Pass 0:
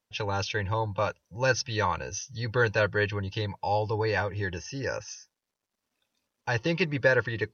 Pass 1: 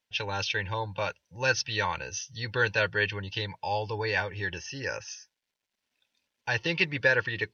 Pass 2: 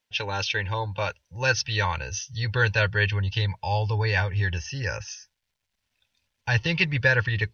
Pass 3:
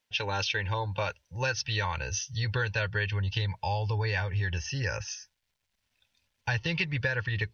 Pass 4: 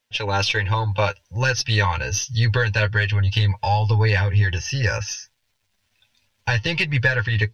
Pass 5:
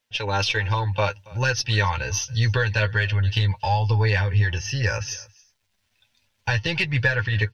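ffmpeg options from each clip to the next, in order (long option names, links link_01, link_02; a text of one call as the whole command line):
ffmpeg -i in.wav -af "equalizer=frequency=2800:width_type=o:width=2.2:gain=10,bandreject=frequency=1200:width=6.5,volume=-5dB" out.wav
ffmpeg -i in.wav -af "asubboost=boost=9:cutoff=100,volume=3dB" out.wav
ffmpeg -i in.wav -af "acompressor=threshold=-26dB:ratio=6" out.wav
ffmpeg -i in.wav -af "dynaudnorm=framelen=220:gausssize=3:maxgain=4dB,aeval=exprs='0.355*(cos(1*acos(clip(val(0)/0.355,-1,1)))-cos(1*PI/2))+0.01*(cos(6*acos(clip(val(0)/0.355,-1,1)))-cos(6*PI/2))':channel_layout=same,flanger=delay=8.1:depth=2.1:regen=28:speed=1.3:shape=sinusoidal,volume=8.5dB" out.wav
ffmpeg -i in.wav -af "aecho=1:1:278:0.0668,volume=-2dB" out.wav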